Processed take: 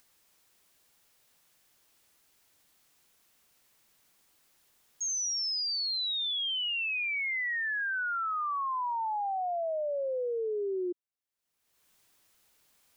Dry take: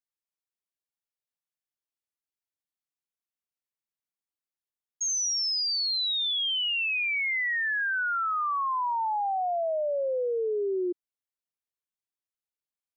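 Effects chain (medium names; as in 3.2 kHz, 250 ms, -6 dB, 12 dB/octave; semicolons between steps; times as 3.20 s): upward compressor, threshold -40 dBFS; trim -4 dB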